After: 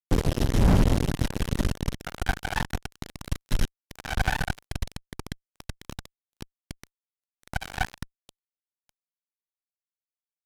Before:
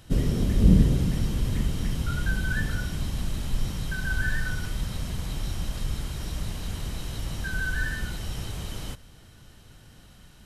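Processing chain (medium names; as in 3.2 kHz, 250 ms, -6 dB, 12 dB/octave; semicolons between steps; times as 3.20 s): harmony voices -12 st -1 dB; power-law waveshaper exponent 2; fuzz box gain 29 dB, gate -35 dBFS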